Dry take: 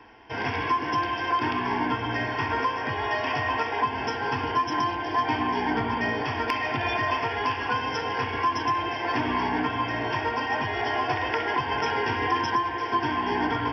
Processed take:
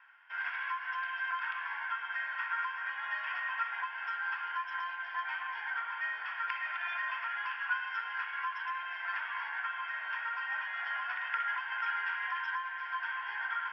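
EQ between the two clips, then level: ladder high-pass 1.3 kHz, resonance 70%; low-pass 4 kHz 24 dB/octave; distance through air 100 m; 0.0 dB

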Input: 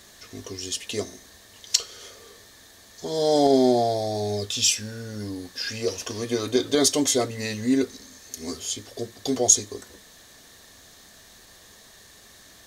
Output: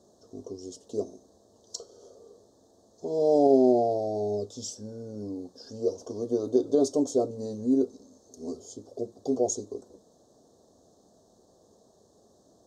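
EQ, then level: high-pass 310 Hz 6 dB/octave; Chebyshev band-stop 550–8200 Hz, order 2; distance through air 180 m; +2.0 dB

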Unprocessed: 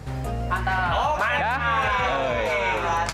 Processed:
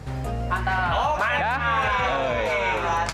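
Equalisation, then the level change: treble shelf 12 kHz -5.5 dB; 0.0 dB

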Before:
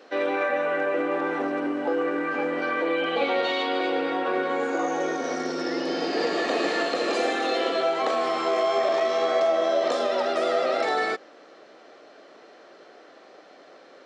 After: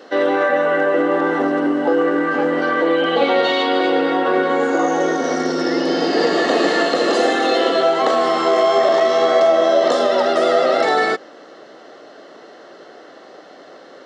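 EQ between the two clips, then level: Butterworth band-stop 2.4 kHz, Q 7.8; bass shelf 200 Hz +6 dB; +8.0 dB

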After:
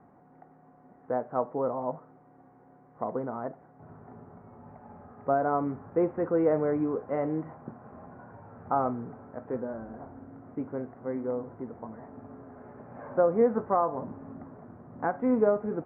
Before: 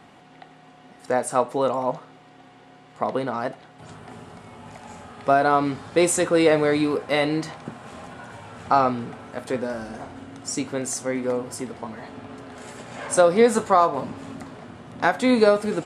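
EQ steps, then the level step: Bessel low-pass 950 Hz, order 8; -6.0 dB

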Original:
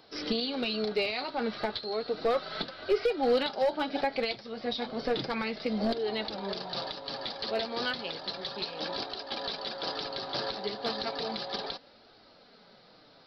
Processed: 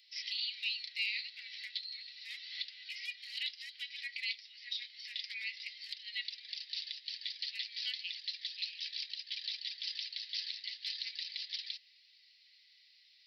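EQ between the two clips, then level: rippled Chebyshev high-pass 1.9 kHz, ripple 3 dB; 0.0 dB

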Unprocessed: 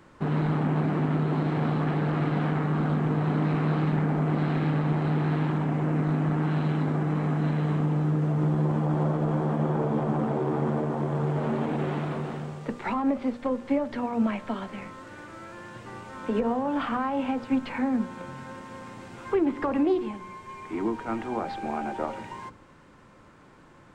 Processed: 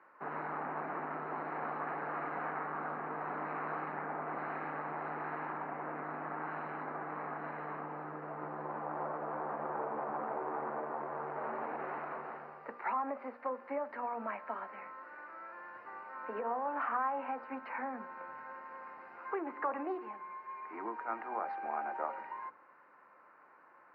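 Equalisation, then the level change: boxcar filter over 13 samples; high-pass 980 Hz 12 dB/octave; distance through air 370 m; +3.0 dB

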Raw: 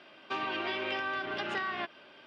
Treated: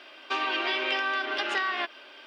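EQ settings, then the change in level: brick-wall FIR high-pass 230 Hz; tilt EQ +2 dB/octave; +5.0 dB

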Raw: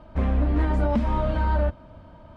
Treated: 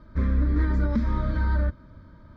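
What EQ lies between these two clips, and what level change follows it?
static phaser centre 2.8 kHz, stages 6; 0.0 dB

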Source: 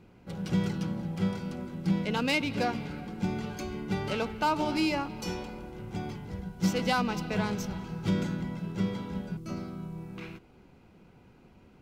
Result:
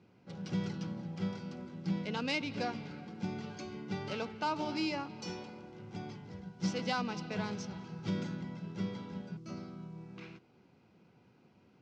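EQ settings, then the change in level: high-pass 95 Hz 24 dB/octave; low-pass 6.6 kHz 24 dB/octave; peaking EQ 5.2 kHz +4 dB 0.65 oct; -7.0 dB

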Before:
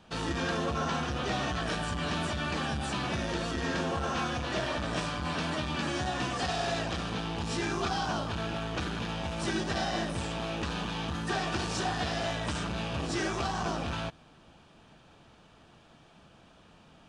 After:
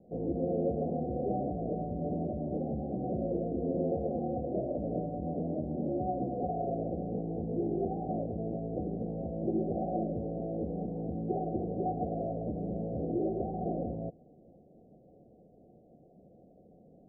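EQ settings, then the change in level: rippled Chebyshev low-pass 760 Hz, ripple 6 dB; peaking EQ 400 Hz +11 dB 1.2 oct; -1.5 dB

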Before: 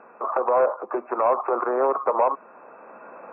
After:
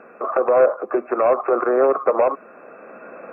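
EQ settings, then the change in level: peaking EQ 930 Hz -14.5 dB 0.47 oct; +7.5 dB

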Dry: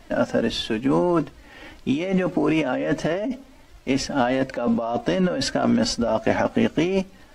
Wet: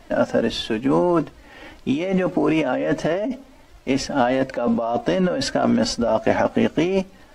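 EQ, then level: peaking EQ 660 Hz +3 dB 2 oct; 0.0 dB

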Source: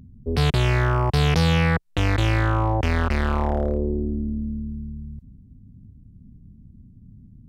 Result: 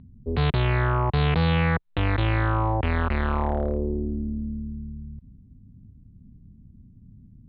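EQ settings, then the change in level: elliptic low-pass 4.1 kHz, stop band 40 dB; distance through air 120 m; peaking EQ 1 kHz +2.5 dB 0.61 oct; -1.5 dB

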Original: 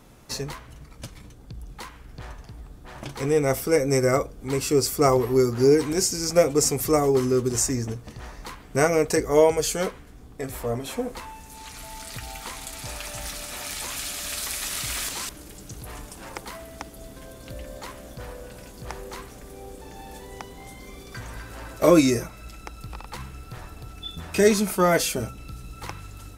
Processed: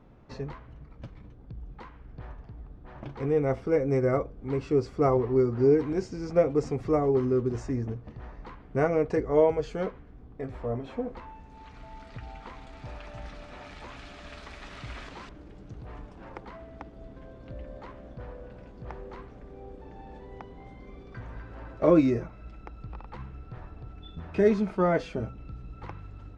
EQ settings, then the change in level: tape spacing loss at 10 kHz 41 dB; -2.0 dB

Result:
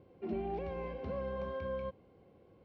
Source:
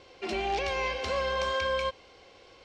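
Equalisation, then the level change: band-pass filter 160 Hz, Q 1.6; distance through air 120 m; +6.5 dB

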